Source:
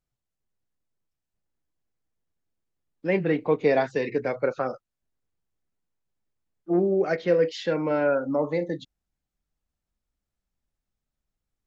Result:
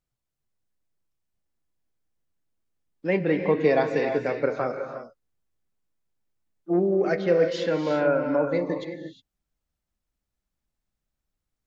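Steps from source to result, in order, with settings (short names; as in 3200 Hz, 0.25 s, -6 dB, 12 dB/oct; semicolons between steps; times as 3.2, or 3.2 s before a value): non-linear reverb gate 0.38 s rising, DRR 6 dB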